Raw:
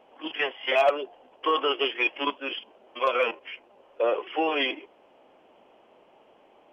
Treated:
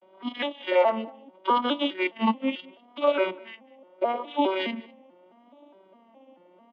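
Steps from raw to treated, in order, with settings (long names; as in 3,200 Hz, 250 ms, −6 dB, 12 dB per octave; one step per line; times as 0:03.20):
vocoder with an arpeggio as carrier major triad, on F#3, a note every 212 ms
comb filter 3.3 ms, depth 77%
pitch vibrato 0.75 Hz 80 cents
on a send: single-tap delay 201 ms −23 dB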